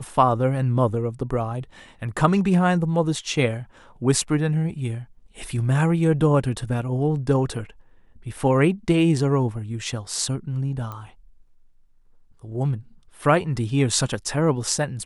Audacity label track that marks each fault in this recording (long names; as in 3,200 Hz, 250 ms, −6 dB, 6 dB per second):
10.920000	10.920000	click −21 dBFS